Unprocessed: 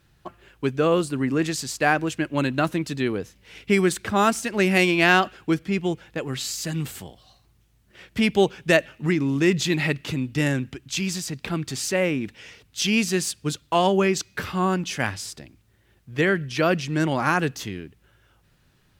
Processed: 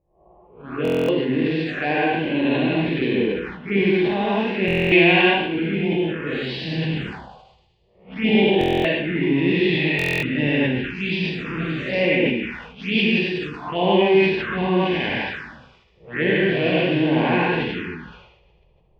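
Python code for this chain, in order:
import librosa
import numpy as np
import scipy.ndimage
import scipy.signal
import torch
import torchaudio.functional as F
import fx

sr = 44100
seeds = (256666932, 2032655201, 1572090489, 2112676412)

y = fx.spec_blur(x, sr, span_ms=203.0)
y = fx.rider(y, sr, range_db=5, speed_s=2.0)
y = fx.env_lowpass(y, sr, base_hz=460.0, full_db=-24.5)
y = fx.low_shelf(y, sr, hz=350.0, db=-8.0)
y = fx.echo_thinned(y, sr, ms=77, feedback_pct=74, hz=620.0, wet_db=-14.5)
y = fx.rev_gated(y, sr, seeds[0], gate_ms=180, shape='rising', drr_db=-4.5)
y = fx.env_phaser(y, sr, low_hz=250.0, high_hz=1300.0, full_db=-23.0)
y = scipy.signal.sosfilt(scipy.signal.butter(4, 3100.0, 'lowpass', fs=sr, output='sos'), y)
y = fx.peak_eq(y, sr, hz=110.0, db=-13.0, octaves=0.41)
y = fx.buffer_glitch(y, sr, at_s=(0.83, 4.66, 8.59, 9.97), block=1024, repeats=10)
y = fx.sustainer(y, sr, db_per_s=57.0)
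y = y * librosa.db_to_amplitude(6.5)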